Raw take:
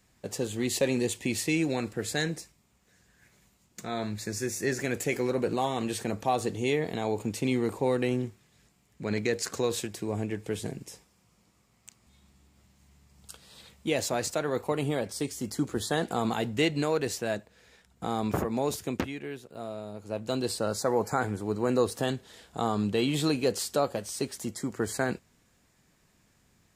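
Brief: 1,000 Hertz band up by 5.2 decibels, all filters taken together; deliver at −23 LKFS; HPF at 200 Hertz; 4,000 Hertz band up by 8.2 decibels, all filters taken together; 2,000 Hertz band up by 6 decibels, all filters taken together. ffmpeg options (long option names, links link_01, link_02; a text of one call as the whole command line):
ffmpeg -i in.wav -af "highpass=200,equalizer=frequency=1000:width_type=o:gain=6,equalizer=frequency=2000:width_type=o:gain=3.5,equalizer=frequency=4000:width_type=o:gain=8.5,volume=5dB" out.wav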